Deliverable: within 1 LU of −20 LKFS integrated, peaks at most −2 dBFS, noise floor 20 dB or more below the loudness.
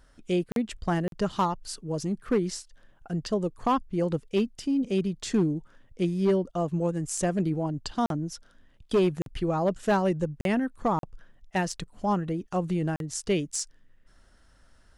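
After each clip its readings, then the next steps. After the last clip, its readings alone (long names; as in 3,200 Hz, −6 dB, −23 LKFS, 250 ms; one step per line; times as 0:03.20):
share of clipped samples 0.5%; peaks flattened at −17.5 dBFS; number of dropouts 7; longest dropout 42 ms; integrated loudness −28.5 LKFS; sample peak −17.5 dBFS; target loudness −20.0 LKFS
→ clipped peaks rebuilt −17.5 dBFS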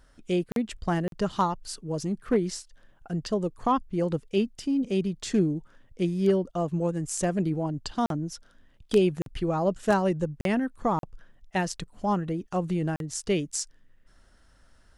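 share of clipped samples 0.0%; number of dropouts 7; longest dropout 42 ms
→ repair the gap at 0:00.52/0:01.08/0:08.06/0:09.22/0:10.41/0:10.99/0:12.96, 42 ms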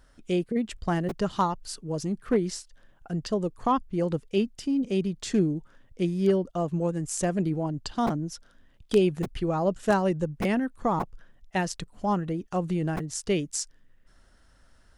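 number of dropouts 0; integrated loudness −28.0 LKFS; sample peak −8.5 dBFS; target loudness −20.0 LKFS
→ level +8 dB
brickwall limiter −2 dBFS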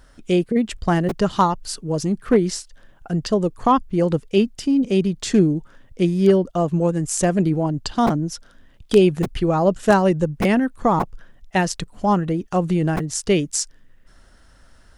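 integrated loudness −20.5 LKFS; sample peak −2.0 dBFS; background noise floor −51 dBFS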